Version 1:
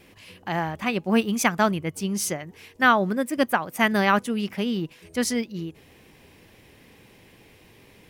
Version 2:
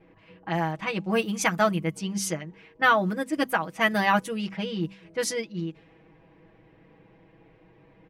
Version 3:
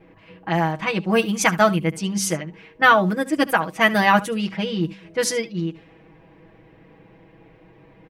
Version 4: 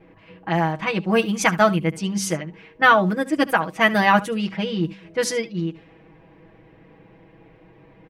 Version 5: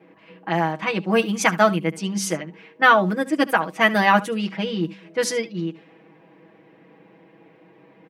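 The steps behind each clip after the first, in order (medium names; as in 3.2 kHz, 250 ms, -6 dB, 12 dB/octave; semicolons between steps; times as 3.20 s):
comb 6.2 ms, depth 98%; de-hum 64.69 Hz, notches 4; level-controlled noise filter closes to 1.3 kHz, open at -18 dBFS; trim -4.5 dB
delay 72 ms -18.5 dB; trim +6 dB
treble shelf 6.3 kHz -5.5 dB
high-pass 170 Hz 24 dB/octave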